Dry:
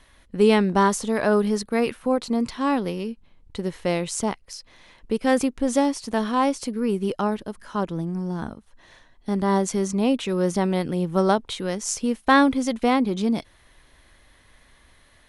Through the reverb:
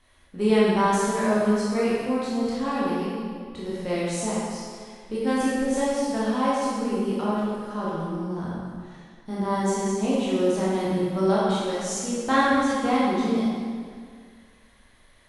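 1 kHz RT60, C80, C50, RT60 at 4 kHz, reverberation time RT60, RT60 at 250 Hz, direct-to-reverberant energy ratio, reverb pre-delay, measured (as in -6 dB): 2.0 s, -0.5 dB, -3.0 dB, 1.6 s, 2.0 s, 2.1 s, -8.0 dB, 15 ms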